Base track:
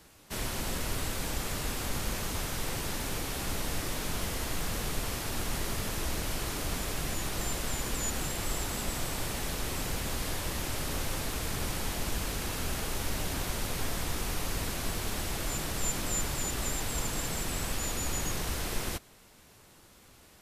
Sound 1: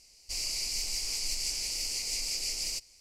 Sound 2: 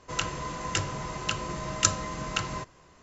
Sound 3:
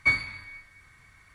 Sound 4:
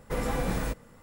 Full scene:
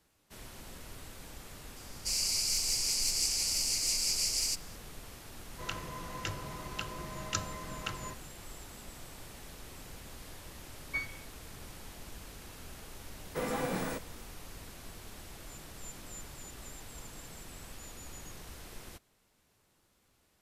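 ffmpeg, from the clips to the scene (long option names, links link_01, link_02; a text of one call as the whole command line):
ffmpeg -i bed.wav -i cue0.wav -i cue1.wav -i cue2.wav -i cue3.wav -filter_complex "[0:a]volume=-14.5dB[link_01];[1:a]equalizer=frequency=11000:width=0.42:gain=7[link_02];[2:a]lowpass=5500[link_03];[3:a]afwtdn=0.0126[link_04];[4:a]highpass=170[link_05];[link_02]atrim=end=3,asetpts=PTS-STARTPTS,volume=-2dB,afade=type=in:duration=0.004:curve=hsin,afade=type=out:start_time=2.996:duration=0.004:curve=hsin,adelay=1760[link_06];[link_03]atrim=end=3.02,asetpts=PTS-STARTPTS,volume=-8.5dB,afade=type=in:duration=0.004:curve=hsin,afade=type=out:start_time=3.016:duration=0.004:curve=hsin,adelay=5500[link_07];[link_04]atrim=end=1.34,asetpts=PTS-STARTPTS,volume=-13.5dB,afade=type=in:duration=0.004:curve=hsin,afade=type=out:start_time=1.336:duration=0.004:curve=hsin,adelay=10880[link_08];[link_05]atrim=end=1.02,asetpts=PTS-STARTPTS,volume=-2.5dB,afade=type=in:duration=0.004:curve=hsin,afade=type=out:start_time=1.016:duration=0.004:curve=hsin,adelay=13250[link_09];[link_01][link_06][link_07][link_08][link_09]amix=inputs=5:normalize=0" out.wav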